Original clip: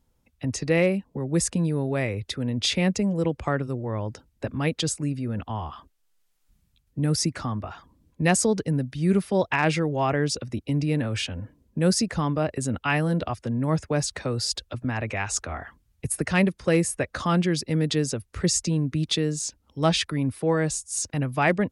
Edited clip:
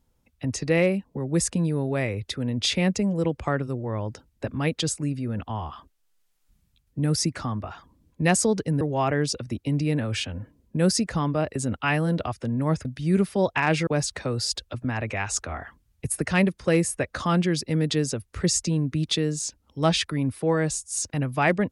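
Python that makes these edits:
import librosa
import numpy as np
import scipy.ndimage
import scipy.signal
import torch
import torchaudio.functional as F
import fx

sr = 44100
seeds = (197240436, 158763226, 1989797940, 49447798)

y = fx.edit(x, sr, fx.move(start_s=8.81, length_s=1.02, to_s=13.87), tone=tone)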